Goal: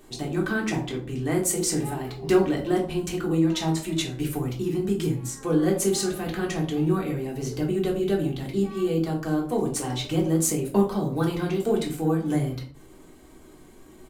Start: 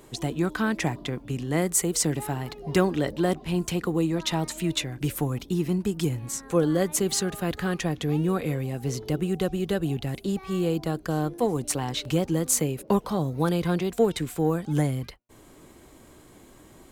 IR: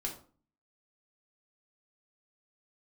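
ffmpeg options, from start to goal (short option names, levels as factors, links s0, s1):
-filter_complex "[0:a]atempo=1.2[s0];[1:a]atrim=start_sample=2205[s1];[s0][s1]afir=irnorm=-1:irlink=0,volume=0.841"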